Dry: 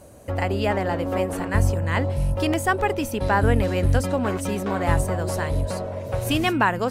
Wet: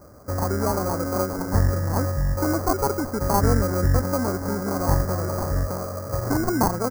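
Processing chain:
sample-rate reduction 1,800 Hz, jitter 0%
elliptic band-stop filter 1,800–5,000 Hz, stop band 80 dB
far-end echo of a speakerphone 100 ms, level −28 dB

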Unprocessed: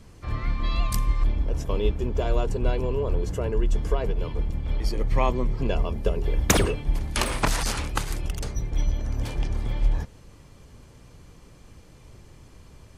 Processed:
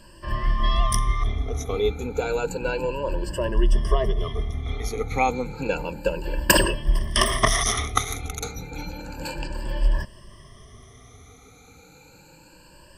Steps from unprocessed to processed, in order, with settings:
rippled gain that drifts along the octave scale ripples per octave 1.3, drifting +0.31 Hz, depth 22 dB
low-shelf EQ 340 Hz −7 dB
level +1 dB

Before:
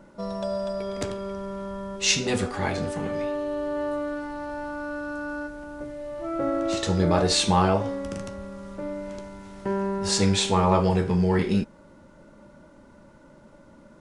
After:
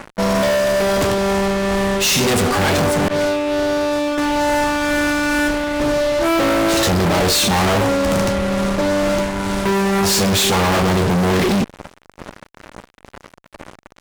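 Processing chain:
0:03.08–0:04.18: downward expander −21 dBFS
amplitude tremolo 2.2 Hz, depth 38%
fuzz pedal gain 44 dB, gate −47 dBFS
level −1.5 dB

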